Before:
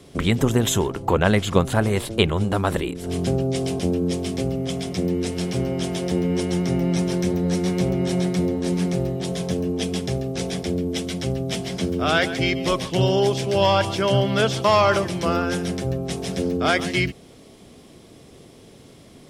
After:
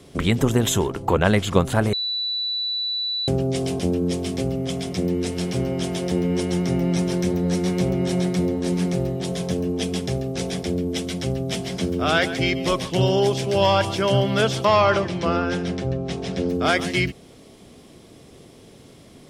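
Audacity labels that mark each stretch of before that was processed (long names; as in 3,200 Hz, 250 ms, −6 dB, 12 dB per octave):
1.930000	3.280000	beep over 3,960 Hz −22.5 dBFS
14.650000	16.490000	low-pass filter 4,900 Hz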